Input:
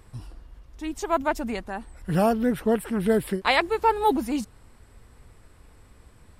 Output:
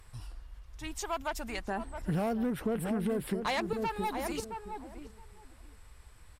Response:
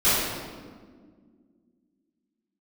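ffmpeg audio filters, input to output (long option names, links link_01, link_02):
-filter_complex "[0:a]asoftclip=type=tanh:threshold=-18.5dB,asetnsamples=nb_out_samples=441:pad=0,asendcmd='1.68 equalizer g 2;3.73 equalizer g -14',equalizer=frequency=260:width=0.48:gain=-12.5,asplit=2[link_01][link_02];[link_02]adelay=669,lowpass=frequency=850:poles=1,volume=-8dB,asplit=2[link_03][link_04];[link_04]adelay=669,lowpass=frequency=850:poles=1,volume=0.18,asplit=2[link_05][link_06];[link_06]adelay=669,lowpass=frequency=850:poles=1,volume=0.18[link_07];[link_01][link_03][link_05][link_07]amix=inputs=4:normalize=0,acompressor=threshold=-29dB:ratio=6" -ar 48000 -c:a sbc -b:a 192k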